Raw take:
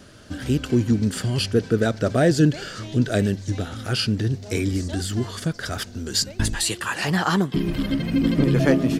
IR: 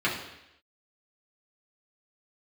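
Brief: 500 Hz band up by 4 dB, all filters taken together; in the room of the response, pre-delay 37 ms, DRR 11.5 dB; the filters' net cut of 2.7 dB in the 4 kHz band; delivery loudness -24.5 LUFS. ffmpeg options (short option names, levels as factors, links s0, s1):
-filter_complex "[0:a]equalizer=f=500:t=o:g=5,equalizer=f=4000:t=o:g=-3.5,asplit=2[s0][s1];[1:a]atrim=start_sample=2205,adelay=37[s2];[s1][s2]afir=irnorm=-1:irlink=0,volume=0.0631[s3];[s0][s3]amix=inputs=2:normalize=0,volume=0.708"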